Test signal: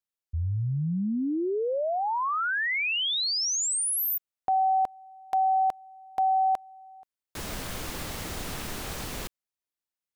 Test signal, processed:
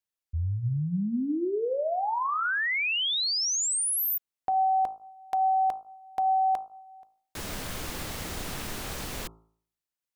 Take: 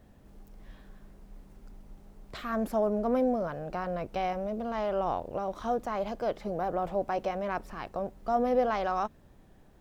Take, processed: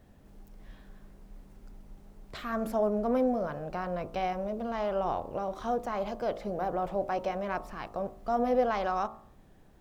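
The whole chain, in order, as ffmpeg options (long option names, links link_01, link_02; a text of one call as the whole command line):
ffmpeg -i in.wav -af "bandreject=frequency=54.83:width_type=h:width=4,bandreject=frequency=109.66:width_type=h:width=4,bandreject=frequency=164.49:width_type=h:width=4,bandreject=frequency=219.32:width_type=h:width=4,bandreject=frequency=274.15:width_type=h:width=4,bandreject=frequency=328.98:width_type=h:width=4,bandreject=frequency=383.81:width_type=h:width=4,bandreject=frequency=438.64:width_type=h:width=4,bandreject=frequency=493.47:width_type=h:width=4,bandreject=frequency=548.3:width_type=h:width=4,bandreject=frequency=603.13:width_type=h:width=4,bandreject=frequency=657.96:width_type=h:width=4,bandreject=frequency=712.79:width_type=h:width=4,bandreject=frequency=767.62:width_type=h:width=4,bandreject=frequency=822.45:width_type=h:width=4,bandreject=frequency=877.28:width_type=h:width=4,bandreject=frequency=932.11:width_type=h:width=4,bandreject=frequency=986.94:width_type=h:width=4,bandreject=frequency=1041.77:width_type=h:width=4,bandreject=frequency=1096.6:width_type=h:width=4,bandreject=frequency=1151.43:width_type=h:width=4,bandreject=frequency=1206.26:width_type=h:width=4,bandreject=frequency=1261.09:width_type=h:width=4,bandreject=frequency=1315.92:width_type=h:width=4,bandreject=frequency=1370.75:width_type=h:width=4" out.wav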